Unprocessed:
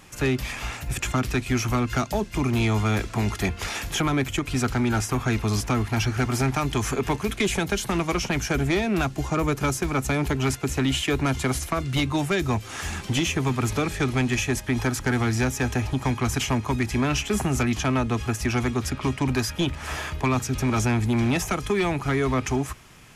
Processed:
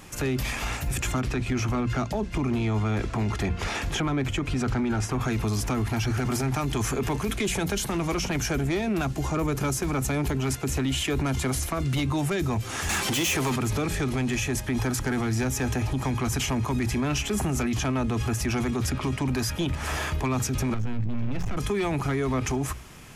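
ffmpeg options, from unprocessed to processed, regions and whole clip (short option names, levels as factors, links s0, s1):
-filter_complex "[0:a]asettb=1/sr,asplit=3[s0][s1][s2];[s0]atrim=end=1.214[s3];[s1]atrim=start=1.21:end=5.21,asetpts=PTS-STARTPTS,afade=t=in:d=0.004:c=qsin,afade=t=out:st=3.996:d=0.004:c=qsin,lowpass=11000,highshelf=f=5400:g=-10.5[s4];[s2]atrim=start=5.206[s5];[s3][s4]acrossfade=d=0.004:c1=hsin:c2=qsin[s6];[s6][s5]acrossfade=d=0.004:c1=qsin:c2=hsin,asettb=1/sr,asplit=3[s7][s8][s9];[s7]atrim=end=12.894[s10];[s8]atrim=start=12.89:end=13.56,asetpts=PTS-STARTPTS,afade=t=in:d=0.004:c=qsin,afade=t=out:st=0.666:d=0.004:c=qsin,asplit=2[s11][s12];[s12]highpass=f=720:p=1,volume=7.94,asoftclip=type=tanh:threshold=0.178[s13];[s11][s13]amix=inputs=2:normalize=0,lowpass=f=6200:p=1,volume=0.501,highshelf=f=8600:g=11[s14];[s9]atrim=start=13.556[s15];[s10][s14]acrossfade=d=0.004:c1=hsin:c2=qsin[s16];[s16][s15]acrossfade=d=0.004:c1=qsin:c2=hsin,asettb=1/sr,asplit=3[s17][s18][s19];[s17]atrim=end=20.744[s20];[s18]atrim=start=20.74:end=21.57,asetpts=PTS-STARTPTS,afade=t=in:d=0.004:c=qsin,afade=t=out:st=0.826:d=0.004:c=qsin,lowpass=5700,aeval=exprs='max(val(0),0)':c=same,bass=f=250:g=10,treble=f=4000:g=-9[s21];[s19]atrim=start=21.566[s22];[s20][s21]acrossfade=d=0.004:c1=hsin:c2=qsin[s23];[s23][s22]acrossfade=d=0.004:c1=qsin:c2=hsin,equalizer=f=2600:w=0.34:g=-3.5,bandreject=f=60:t=h:w=6,bandreject=f=120:t=h:w=6,bandreject=f=180:t=h:w=6,alimiter=level_in=1.06:limit=0.0631:level=0:latency=1:release=24,volume=0.944,volume=1.78"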